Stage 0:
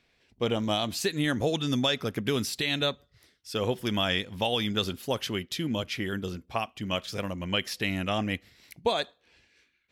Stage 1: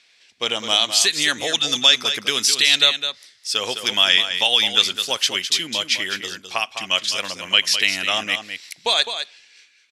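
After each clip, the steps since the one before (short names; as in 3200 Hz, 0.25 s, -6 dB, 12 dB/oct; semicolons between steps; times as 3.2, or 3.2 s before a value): weighting filter ITU-R 468; on a send: echo 0.208 s -9 dB; on the sum: gain +5.5 dB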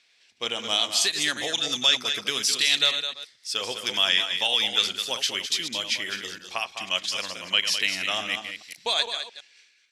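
reverse delay 0.112 s, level -8.5 dB; gain -6.5 dB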